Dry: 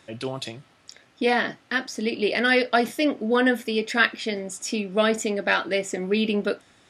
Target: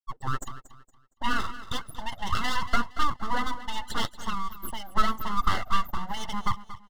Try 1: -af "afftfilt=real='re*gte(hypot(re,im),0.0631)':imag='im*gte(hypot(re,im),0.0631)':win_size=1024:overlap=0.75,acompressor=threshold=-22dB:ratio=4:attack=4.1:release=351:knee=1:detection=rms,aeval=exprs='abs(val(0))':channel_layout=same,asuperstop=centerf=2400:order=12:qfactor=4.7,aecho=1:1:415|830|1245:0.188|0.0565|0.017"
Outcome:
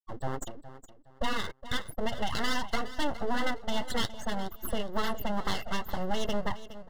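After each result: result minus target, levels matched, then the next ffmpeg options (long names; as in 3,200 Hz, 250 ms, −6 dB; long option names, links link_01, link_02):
echo 183 ms late; 500 Hz band +10.5 dB
-af "afftfilt=real='re*gte(hypot(re,im),0.0631)':imag='im*gte(hypot(re,im),0.0631)':win_size=1024:overlap=0.75,acompressor=threshold=-22dB:ratio=4:attack=4.1:release=351:knee=1:detection=rms,aeval=exprs='abs(val(0))':channel_layout=same,asuperstop=centerf=2400:order=12:qfactor=4.7,aecho=1:1:232|464|696:0.188|0.0565|0.017"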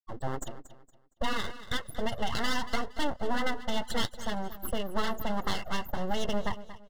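500 Hz band +10.5 dB
-af "afftfilt=real='re*gte(hypot(re,im),0.0631)':imag='im*gte(hypot(re,im),0.0631)':win_size=1024:overlap=0.75,acompressor=threshold=-22dB:ratio=4:attack=4.1:release=351:knee=1:detection=rms,highpass=frequency=600:width_type=q:width=4.3,aeval=exprs='abs(val(0))':channel_layout=same,asuperstop=centerf=2400:order=12:qfactor=4.7,aecho=1:1:232|464|696:0.188|0.0565|0.017"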